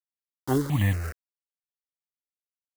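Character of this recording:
a quantiser's noise floor 6 bits, dither none
notches that jump at a steady rate 4.3 Hz 580–1,700 Hz

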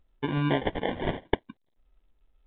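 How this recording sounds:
phaser sweep stages 8, 2 Hz, lowest notch 360–1,200 Hz
aliases and images of a low sample rate 1,300 Hz, jitter 0%
mu-law

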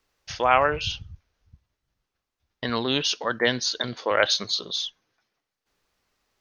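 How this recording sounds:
background noise floor −85 dBFS
spectral slope −2.5 dB per octave

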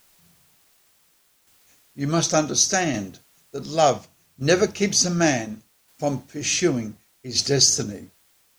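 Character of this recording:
a quantiser's noise floor 10 bits, dither triangular
tremolo saw down 0.68 Hz, depth 45%

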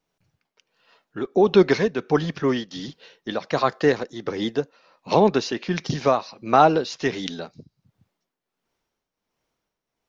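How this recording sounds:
tremolo triangle 1.4 Hz, depth 70%

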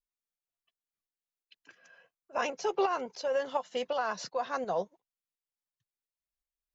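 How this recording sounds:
tremolo saw up 2.8 Hz, depth 50%

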